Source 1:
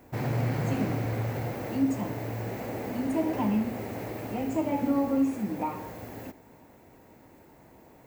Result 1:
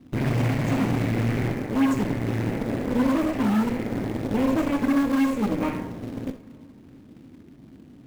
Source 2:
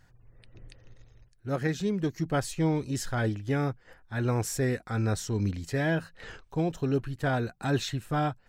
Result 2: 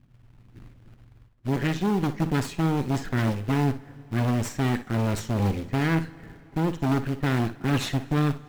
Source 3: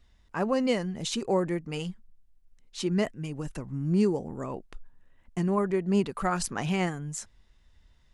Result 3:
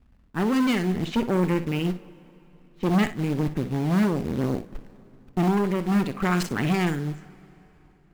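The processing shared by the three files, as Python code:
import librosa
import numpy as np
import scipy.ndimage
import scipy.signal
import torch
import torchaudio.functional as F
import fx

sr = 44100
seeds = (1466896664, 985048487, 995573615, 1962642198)

y = fx.env_lowpass(x, sr, base_hz=370.0, full_db=-22.5)
y = fx.graphic_eq(y, sr, hz=(125, 250, 500, 1000, 2000, 8000), db=(4, 9, -10, -8, 4, 7))
y = fx.cheby_harmonics(y, sr, harmonics=(8,), levels_db=(-16,), full_scale_db=-12.5)
y = fx.rider(y, sr, range_db=4, speed_s=0.5)
y = 10.0 ** (-16.0 / 20.0) * np.tanh(y / 10.0 ** (-16.0 / 20.0))
y = fx.quant_float(y, sr, bits=2)
y = fx.bass_treble(y, sr, bass_db=-4, treble_db=-7)
y = fx.room_early_taps(y, sr, ms=(49, 61), db=(-17.0, -14.0))
y = fx.rev_plate(y, sr, seeds[0], rt60_s=3.6, hf_ratio=0.8, predelay_ms=0, drr_db=19.5)
y = y * librosa.db_to_amplitude(4.0)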